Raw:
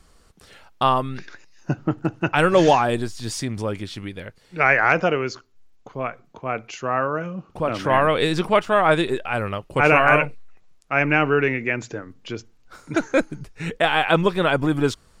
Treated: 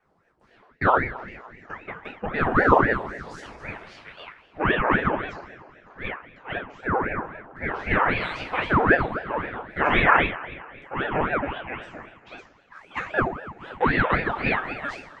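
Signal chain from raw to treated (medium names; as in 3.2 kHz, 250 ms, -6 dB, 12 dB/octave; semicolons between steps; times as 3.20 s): LFO band-pass saw up 0.46 Hz 500–1900 Hz; two-slope reverb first 0.44 s, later 2.5 s, from -18 dB, DRR -5 dB; ring modulator with a swept carrier 650 Hz, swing 80%, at 3.8 Hz; trim -1 dB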